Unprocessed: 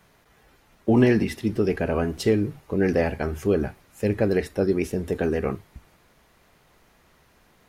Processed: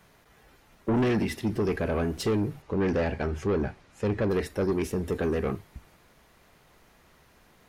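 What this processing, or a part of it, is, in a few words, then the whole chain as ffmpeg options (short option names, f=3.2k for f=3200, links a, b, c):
saturation between pre-emphasis and de-emphasis: -filter_complex "[0:a]asettb=1/sr,asplit=3[a][b][c];[a]atrim=end=2.624[d];[b]atrim=start=2.62:end=4.3,asetpts=PTS-STARTPTS,afade=t=in:d=0.004:c=qsin,afade=t=out:st=1.676:d=0.004:c=qsin,lowpass=6.1k[e];[c]atrim=start=4.296[f];[d][e]acrossfade=d=0.004:c1=hsin:c2=qsin[g];[g][f]acrossfade=d=0.004:c1=qsin:c2=hsin,highshelf=f=4.9k:g=11,asoftclip=type=tanh:threshold=-21dB,highshelf=f=4.9k:g=-11"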